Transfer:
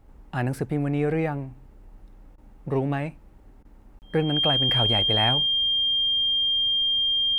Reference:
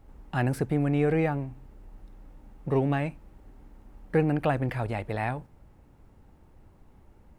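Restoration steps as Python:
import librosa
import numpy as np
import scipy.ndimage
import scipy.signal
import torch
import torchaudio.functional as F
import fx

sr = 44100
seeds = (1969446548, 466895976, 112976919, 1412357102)

y = fx.notch(x, sr, hz=3200.0, q=30.0)
y = fx.fix_interpolate(y, sr, at_s=(3.99,), length_ms=29.0)
y = fx.fix_interpolate(y, sr, at_s=(2.36, 3.63), length_ms=18.0)
y = fx.gain(y, sr, db=fx.steps((0.0, 0.0), (4.69, -5.0)))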